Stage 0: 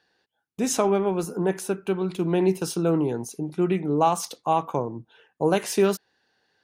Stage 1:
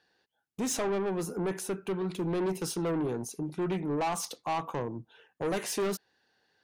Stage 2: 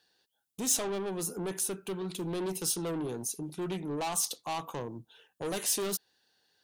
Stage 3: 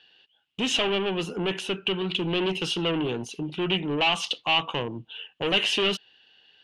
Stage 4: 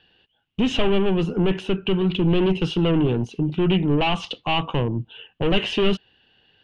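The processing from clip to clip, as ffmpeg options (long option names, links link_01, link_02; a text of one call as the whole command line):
ffmpeg -i in.wav -af "asoftclip=type=tanh:threshold=-24dB,volume=-2.5dB" out.wav
ffmpeg -i in.wav -af "aexciter=amount=2.5:drive=6.2:freq=3000,volume=-4dB" out.wav
ffmpeg -i in.wav -af "lowpass=frequency=2900:width_type=q:width=8.7,volume=7dB" out.wav
ffmpeg -i in.wav -af "aemphasis=mode=reproduction:type=riaa,volume=2dB" out.wav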